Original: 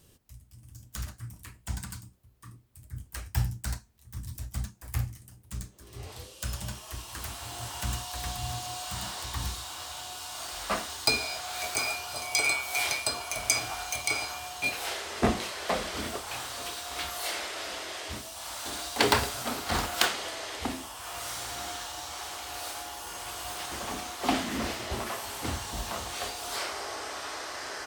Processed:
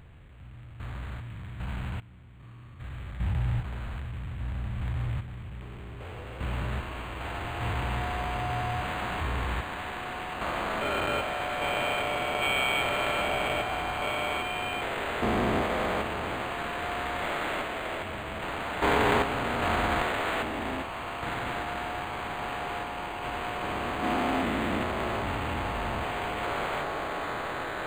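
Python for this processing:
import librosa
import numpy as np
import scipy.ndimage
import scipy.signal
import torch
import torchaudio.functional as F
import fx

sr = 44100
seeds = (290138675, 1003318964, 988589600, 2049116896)

y = fx.spec_steps(x, sr, hold_ms=400)
y = np.interp(np.arange(len(y)), np.arange(len(y))[::8], y[::8])
y = F.gain(torch.from_numpy(y), 7.5).numpy()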